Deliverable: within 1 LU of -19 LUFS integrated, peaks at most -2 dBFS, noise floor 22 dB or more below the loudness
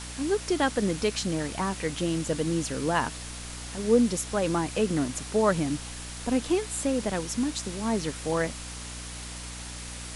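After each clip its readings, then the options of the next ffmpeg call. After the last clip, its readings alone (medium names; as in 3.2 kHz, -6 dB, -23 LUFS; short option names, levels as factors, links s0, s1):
hum 60 Hz; highest harmonic 300 Hz; hum level -39 dBFS; noise floor -39 dBFS; noise floor target -51 dBFS; loudness -28.5 LUFS; peak level -10.0 dBFS; loudness target -19.0 LUFS
-> -af "bandreject=f=60:t=h:w=4,bandreject=f=120:t=h:w=4,bandreject=f=180:t=h:w=4,bandreject=f=240:t=h:w=4,bandreject=f=300:t=h:w=4"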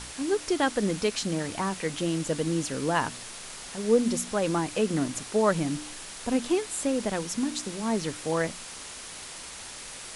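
hum not found; noise floor -42 dBFS; noise floor target -51 dBFS
-> -af "afftdn=nr=9:nf=-42"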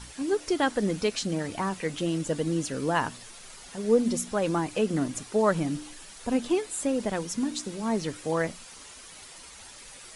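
noise floor -47 dBFS; noise floor target -51 dBFS
-> -af "afftdn=nr=6:nf=-47"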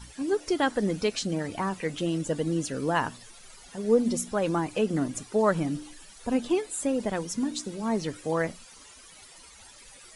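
noise floor -51 dBFS; loudness -28.5 LUFS; peak level -10.0 dBFS; loudness target -19.0 LUFS
-> -af "volume=2.99,alimiter=limit=0.794:level=0:latency=1"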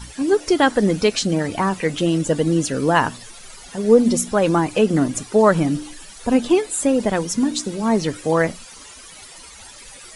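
loudness -19.0 LUFS; peak level -2.0 dBFS; noise floor -41 dBFS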